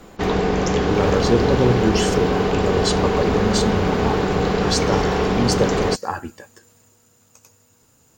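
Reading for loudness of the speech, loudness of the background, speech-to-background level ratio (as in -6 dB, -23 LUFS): -23.5 LUFS, -20.0 LUFS, -3.5 dB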